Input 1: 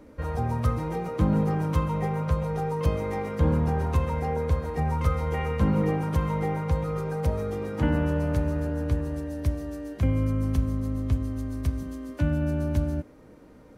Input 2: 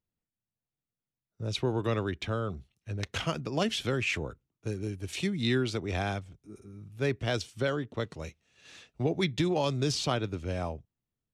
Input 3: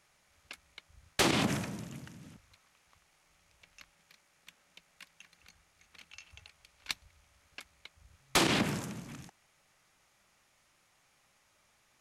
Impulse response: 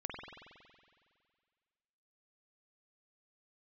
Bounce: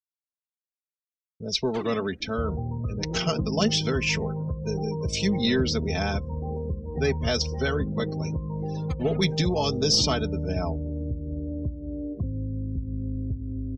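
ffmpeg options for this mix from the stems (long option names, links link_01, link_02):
-filter_complex "[0:a]tiltshelf=frequency=730:gain=7,acompressor=threshold=-27dB:ratio=8,adelay=2200,volume=0dB[link_01];[1:a]equalizer=frequency=5300:width=2.8:gain=13.5,aecho=1:1:4.6:0.69,aeval=exprs='0.316*(cos(1*acos(clip(val(0)/0.316,-1,1)))-cos(1*PI/2))+0.0398*(cos(2*acos(clip(val(0)/0.316,-1,1)))-cos(2*PI/2))+0.02*(cos(5*acos(clip(val(0)/0.316,-1,1)))-cos(5*PI/2))':channel_layout=same,volume=0dB,asplit=2[link_02][link_03];[2:a]aphaser=in_gain=1:out_gain=1:delay=4.6:decay=0.66:speed=1:type=sinusoidal,adelay=550,volume=-13dB[link_04];[link_03]apad=whole_len=553592[link_05];[link_04][link_05]sidechaingate=range=-33dB:threshold=-53dB:ratio=16:detection=peak[link_06];[link_01][link_02][link_06]amix=inputs=3:normalize=0,afftdn=noise_reduction=32:noise_floor=-37,agate=range=-33dB:threshold=-44dB:ratio=3:detection=peak"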